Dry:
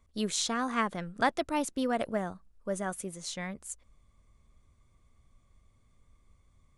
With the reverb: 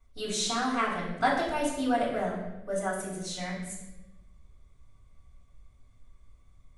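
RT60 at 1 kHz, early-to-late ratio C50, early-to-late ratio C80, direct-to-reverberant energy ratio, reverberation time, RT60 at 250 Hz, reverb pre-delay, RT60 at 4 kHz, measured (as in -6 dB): 0.85 s, 3.0 dB, 5.5 dB, -8.5 dB, 1.0 s, 1.4 s, 3 ms, 0.85 s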